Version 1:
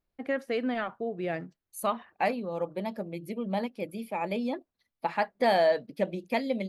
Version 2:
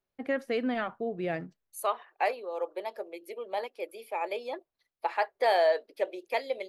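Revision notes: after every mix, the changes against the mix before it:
second voice: add Chebyshev high-pass 380 Hz, order 4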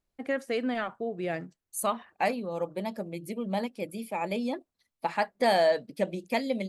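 second voice: remove Chebyshev high-pass 380 Hz, order 4; master: add bell 8000 Hz +11 dB 1 oct

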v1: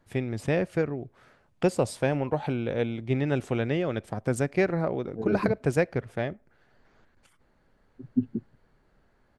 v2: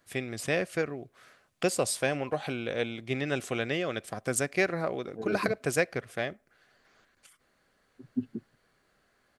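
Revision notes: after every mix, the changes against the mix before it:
first voice: add Butterworth band-stop 890 Hz, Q 7.4; master: add tilt +3 dB/oct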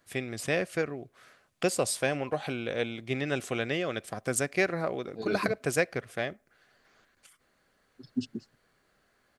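second voice: remove LPF 1600 Hz 24 dB/oct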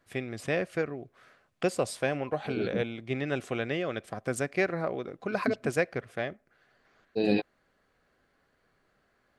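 second voice: entry -2.70 s; master: add high shelf 4300 Hz -11 dB

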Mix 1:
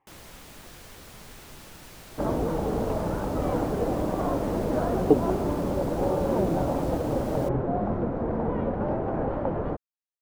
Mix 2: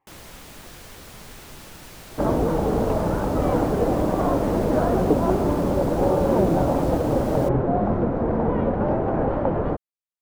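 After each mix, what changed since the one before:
speech: send -10.0 dB; first sound +4.0 dB; second sound +5.5 dB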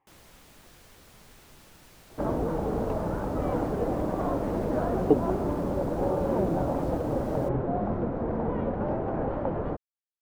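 first sound -11.5 dB; second sound -7.0 dB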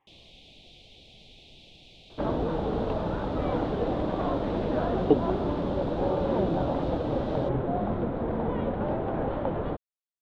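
first sound: add Chebyshev band-stop 750–2400 Hz, order 3; master: add synth low-pass 3600 Hz, resonance Q 4.4

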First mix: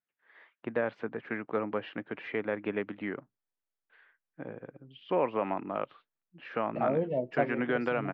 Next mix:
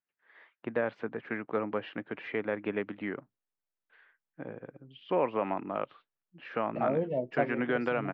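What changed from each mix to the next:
second voice: send -7.5 dB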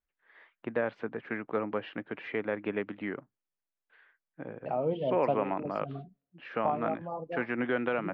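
second voice: entry -2.10 s

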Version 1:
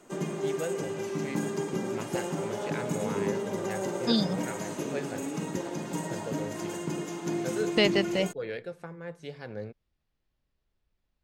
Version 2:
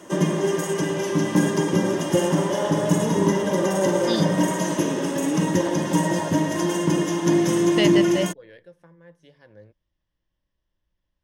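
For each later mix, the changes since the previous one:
first voice -11.5 dB; background +10.5 dB; master: add ripple EQ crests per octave 1.2, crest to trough 8 dB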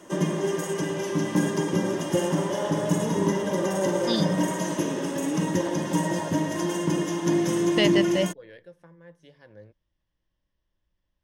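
background -4.0 dB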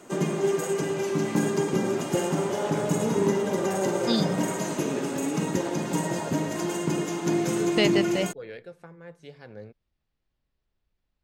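first voice +7.0 dB; master: remove ripple EQ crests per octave 1.2, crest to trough 8 dB

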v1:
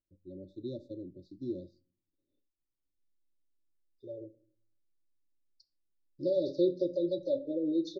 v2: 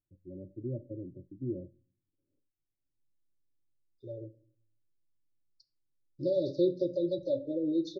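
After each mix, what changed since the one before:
first voice: add LPF 1100 Hz 24 dB/oct; master: add bell 120 Hz +11 dB 0.6 oct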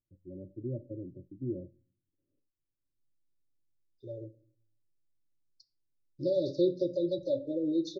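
master: remove air absorption 78 m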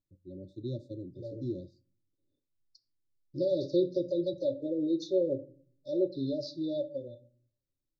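first voice: remove LPF 1100 Hz 24 dB/oct; second voice: entry -2.85 s

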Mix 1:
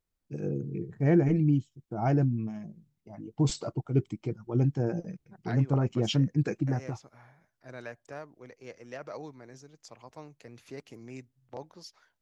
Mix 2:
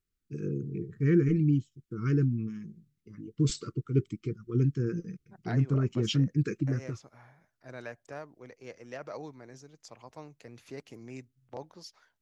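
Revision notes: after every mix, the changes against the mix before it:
first voice: add Chebyshev band-stop 440–1200 Hz, order 3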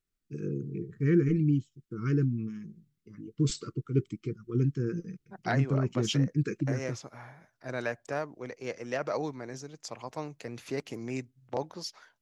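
second voice +9.0 dB; master: add bell 66 Hz -7 dB 1 oct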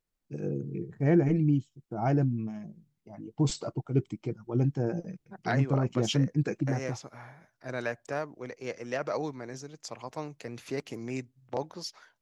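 first voice: remove Chebyshev band-stop 440–1200 Hz, order 3

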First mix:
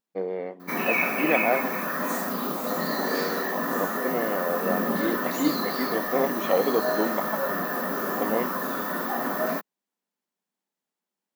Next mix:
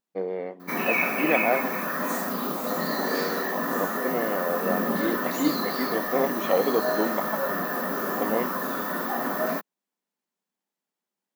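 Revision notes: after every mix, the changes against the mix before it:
none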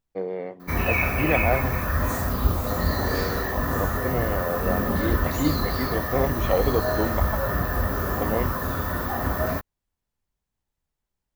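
master: remove brick-wall FIR high-pass 170 Hz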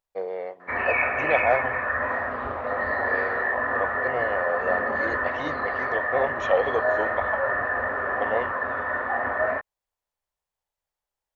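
second voice -7.0 dB; background: add speaker cabinet 100–2400 Hz, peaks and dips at 170 Hz -8 dB, 250 Hz +8 dB, 1800 Hz +9 dB; master: add resonant low shelf 380 Hz -12.5 dB, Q 1.5

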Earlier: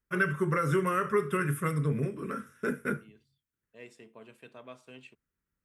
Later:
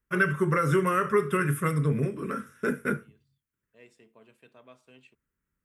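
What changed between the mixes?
first voice +3.5 dB; second voice -5.5 dB

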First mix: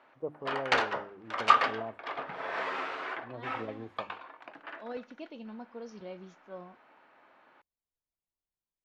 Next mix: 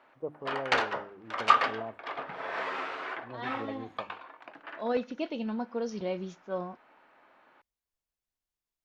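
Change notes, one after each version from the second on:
second voice +10.5 dB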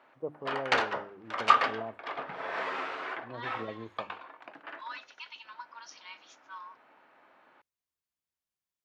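second voice: add brick-wall FIR high-pass 890 Hz; master: add HPF 57 Hz

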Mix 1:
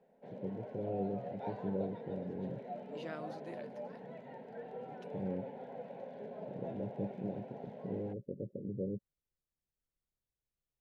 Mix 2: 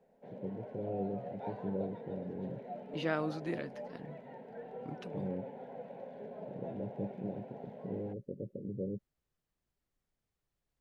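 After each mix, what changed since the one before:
second voice +12.0 dB; master: add high shelf 4700 Hz -6.5 dB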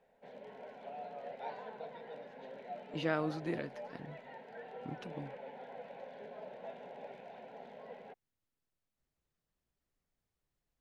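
first voice: muted; background: add tilt shelf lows -9 dB, about 720 Hz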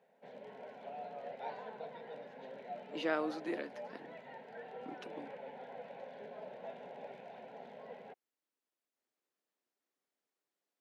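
speech: add HPF 270 Hz 24 dB/oct

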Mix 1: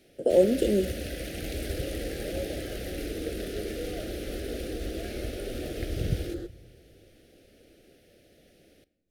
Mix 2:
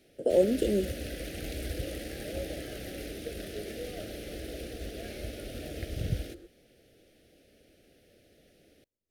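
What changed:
second sound -12.0 dB; reverb: off

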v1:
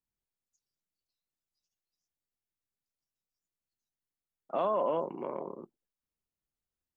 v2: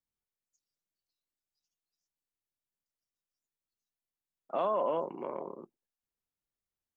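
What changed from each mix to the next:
master: add low shelf 270 Hz -4.5 dB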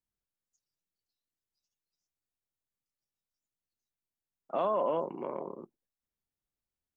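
master: add low shelf 270 Hz +4.5 dB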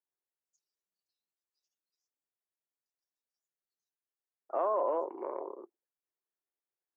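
second voice: add Chebyshev band-pass 350–1900 Hz, order 3

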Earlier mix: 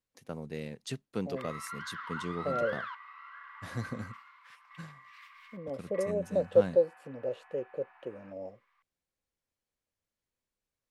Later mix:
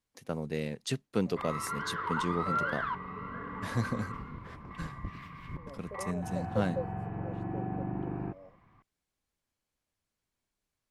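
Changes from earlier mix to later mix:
first voice +5.0 dB; second voice -11.5 dB; background: remove Bessel high-pass 1700 Hz, order 6

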